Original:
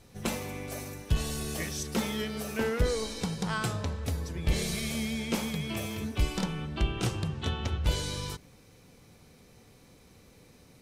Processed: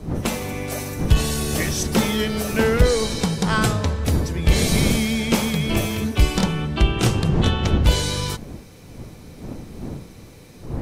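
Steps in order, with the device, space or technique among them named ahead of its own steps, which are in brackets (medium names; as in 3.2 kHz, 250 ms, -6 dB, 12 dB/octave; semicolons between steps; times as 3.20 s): smartphone video outdoors (wind noise 230 Hz -39 dBFS; level rider gain up to 3.5 dB; trim +7.5 dB; AAC 96 kbps 48 kHz)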